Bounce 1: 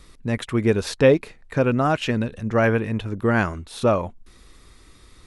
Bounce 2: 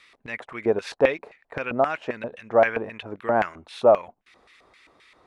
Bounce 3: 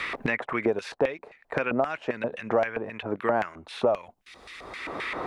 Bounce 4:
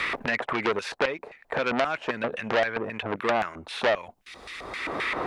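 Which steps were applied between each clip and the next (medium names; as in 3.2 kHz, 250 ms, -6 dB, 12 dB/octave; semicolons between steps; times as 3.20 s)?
dynamic bell 2.8 kHz, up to -6 dB, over -40 dBFS, Q 0.78; LFO band-pass square 3.8 Hz 710–2300 Hz; trim +8 dB
three bands compressed up and down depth 100%; trim -3.5 dB
transformer saturation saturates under 2.6 kHz; trim +4.5 dB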